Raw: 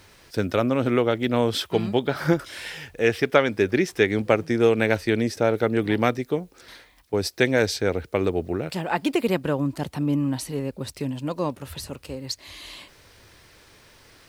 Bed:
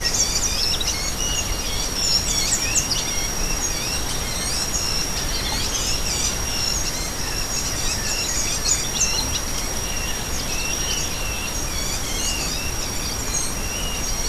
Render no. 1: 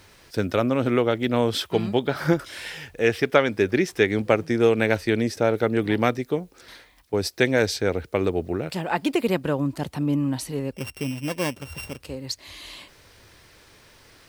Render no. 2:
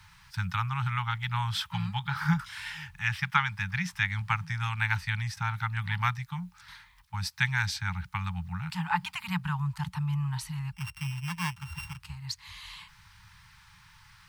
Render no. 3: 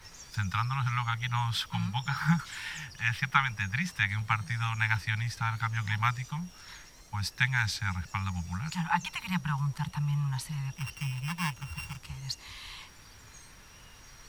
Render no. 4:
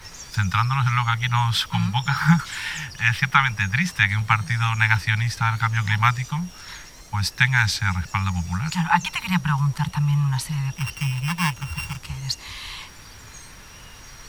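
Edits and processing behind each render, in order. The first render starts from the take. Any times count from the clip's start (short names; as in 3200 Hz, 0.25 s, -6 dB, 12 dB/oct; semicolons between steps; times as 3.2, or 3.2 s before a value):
10.73–12 sample sorter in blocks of 16 samples
Chebyshev band-stop 180–850 Hz, order 5; high shelf 3800 Hz -8.5 dB
add bed -30 dB
gain +9.5 dB; limiter -1 dBFS, peak gain reduction 2.5 dB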